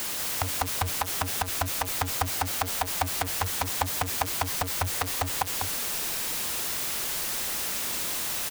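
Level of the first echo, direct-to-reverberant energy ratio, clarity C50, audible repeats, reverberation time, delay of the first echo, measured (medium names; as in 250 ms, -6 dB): -4.5 dB, no reverb, no reverb, 1, no reverb, 196 ms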